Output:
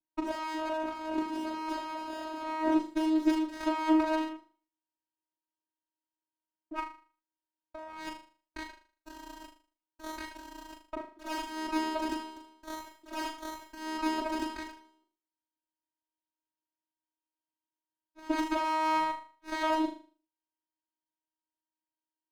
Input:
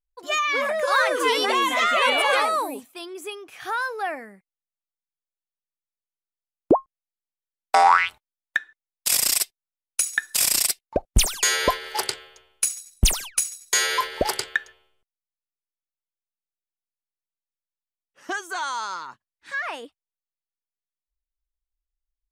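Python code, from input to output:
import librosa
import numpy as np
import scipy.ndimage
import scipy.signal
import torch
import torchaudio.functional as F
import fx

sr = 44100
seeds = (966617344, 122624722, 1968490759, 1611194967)

p1 = fx.over_compress(x, sr, threshold_db=-32.0, ratio=-1.0)
p2 = fx.vocoder(p1, sr, bands=8, carrier='saw', carrier_hz=315.0)
p3 = p2 + fx.room_flutter(p2, sr, wall_m=6.7, rt60_s=0.41, dry=0)
y = fx.running_max(p3, sr, window=9)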